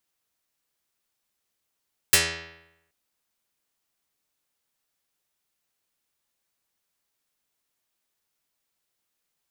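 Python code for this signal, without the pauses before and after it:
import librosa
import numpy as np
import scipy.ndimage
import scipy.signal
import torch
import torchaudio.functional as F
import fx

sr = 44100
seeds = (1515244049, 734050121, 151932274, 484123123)

y = fx.pluck(sr, length_s=0.78, note=40, decay_s=0.88, pick=0.32, brightness='dark')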